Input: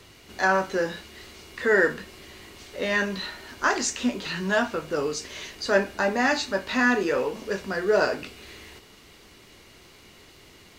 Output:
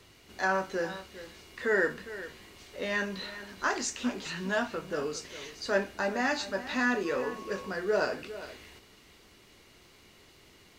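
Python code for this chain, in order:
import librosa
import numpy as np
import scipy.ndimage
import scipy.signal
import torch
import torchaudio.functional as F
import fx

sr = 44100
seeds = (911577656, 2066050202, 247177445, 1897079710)

y = fx.dmg_tone(x, sr, hz=1100.0, level_db=-37.0, at=(7.04, 7.69), fade=0.02)
y = y + 10.0 ** (-14.5 / 20.0) * np.pad(y, (int(406 * sr / 1000.0), 0))[:len(y)]
y = y * 10.0 ** (-6.5 / 20.0)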